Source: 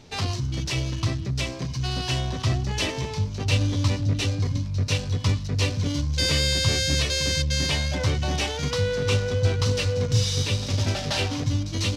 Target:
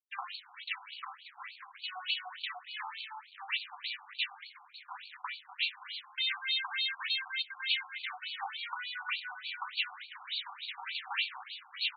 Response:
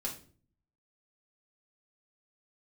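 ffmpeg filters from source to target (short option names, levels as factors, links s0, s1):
-af "aeval=exprs='sgn(val(0))*max(abs(val(0))-0.01,0)':c=same,afftfilt=real='re*between(b*sr/1024,990*pow(3300/990,0.5+0.5*sin(2*PI*3.4*pts/sr))/1.41,990*pow(3300/990,0.5+0.5*sin(2*PI*3.4*pts/sr))*1.41)':imag='im*between(b*sr/1024,990*pow(3300/990,0.5+0.5*sin(2*PI*3.4*pts/sr))/1.41,990*pow(3300/990,0.5+0.5*sin(2*PI*3.4*pts/sr))*1.41)':win_size=1024:overlap=0.75"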